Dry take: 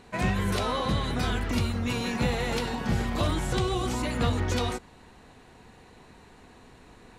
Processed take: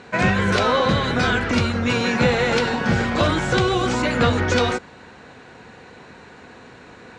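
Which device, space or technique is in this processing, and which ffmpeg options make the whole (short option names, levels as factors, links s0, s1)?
car door speaker: -af "highpass=95,equalizer=f=520:t=q:w=4:g=5,equalizer=f=1500:t=q:w=4:g=8,equalizer=f=2300:t=q:w=4:g=3,lowpass=f=7200:w=0.5412,lowpass=f=7200:w=1.3066,volume=2.51"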